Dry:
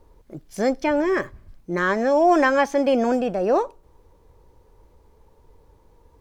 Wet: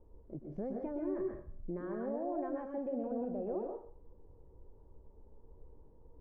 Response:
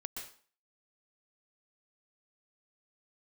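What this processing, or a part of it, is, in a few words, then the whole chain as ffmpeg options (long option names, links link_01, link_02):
television next door: -filter_complex "[0:a]acompressor=threshold=-31dB:ratio=4,lowpass=600[link_01];[1:a]atrim=start_sample=2205[link_02];[link_01][link_02]afir=irnorm=-1:irlink=0,asettb=1/sr,asplit=3[link_03][link_04][link_05];[link_03]atrim=end=2.884[link_06];[link_04]atrim=start=2.88:end=3.43,asetpts=PTS-STARTPTS,afade=type=in:duration=0.004:curve=qsin,afade=type=out:start_time=0.546:duration=0.004:curve=qsin,lowpass=2400[link_07];[link_05]atrim=start=3.426[link_08];[link_06][link_07]acrossfade=duration=0.004:curve1=hsin:curve2=qsin[link_09];[link_09][link_08]acrossfade=duration=0.004:curve1=qsin:curve2=hsin,volume=-2.5dB"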